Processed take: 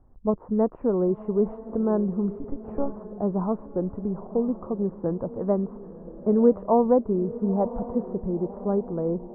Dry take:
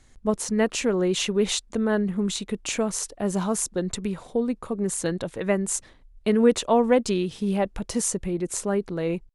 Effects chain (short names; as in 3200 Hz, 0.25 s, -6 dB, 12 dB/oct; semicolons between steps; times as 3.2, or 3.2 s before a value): 2.34–3 monotone LPC vocoder at 8 kHz 280 Hz; steep low-pass 1100 Hz 36 dB/oct; diffused feedback echo 0.987 s, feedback 40%, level -14 dB